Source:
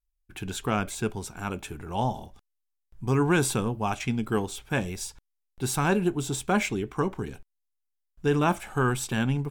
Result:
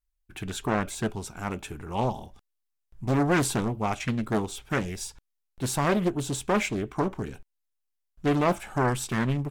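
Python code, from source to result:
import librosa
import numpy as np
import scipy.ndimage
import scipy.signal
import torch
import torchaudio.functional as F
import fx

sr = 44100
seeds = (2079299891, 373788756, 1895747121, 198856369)

y = fx.doppler_dist(x, sr, depth_ms=0.62)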